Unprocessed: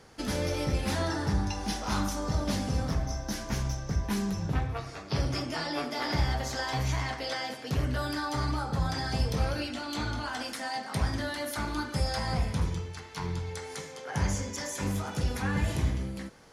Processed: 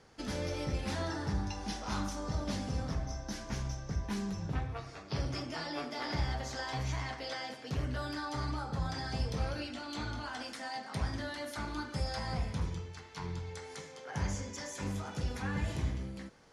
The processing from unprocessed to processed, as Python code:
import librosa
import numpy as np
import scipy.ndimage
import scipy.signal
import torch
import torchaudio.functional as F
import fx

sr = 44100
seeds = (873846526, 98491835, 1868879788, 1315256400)

y = scipy.signal.sosfilt(scipy.signal.butter(2, 8500.0, 'lowpass', fs=sr, output='sos'), x)
y = y * librosa.db_to_amplitude(-6.0)